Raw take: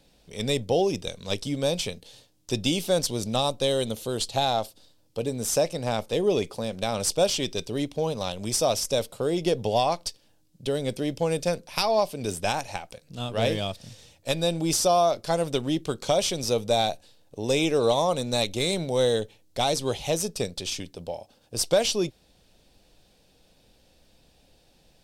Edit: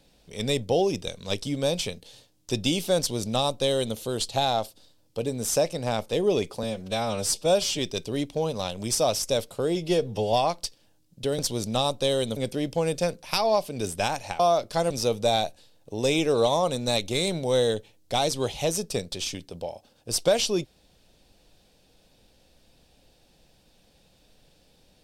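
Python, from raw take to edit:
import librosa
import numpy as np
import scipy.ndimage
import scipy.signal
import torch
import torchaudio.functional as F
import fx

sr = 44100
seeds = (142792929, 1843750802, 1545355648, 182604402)

y = fx.edit(x, sr, fx.duplicate(start_s=2.98, length_s=0.98, to_s=10.81),
    fx.stretch_span(start_s=6.63, length_s=0.77, factor=1.5),
    fx.stretch_span(start_s=9.37, length_s=0.38, factor=1.5),
    fx.cut(start_s=12.84, length_s=2.09),
    fx.cut(start_s=15.44, length_s=0.92), tone=tone)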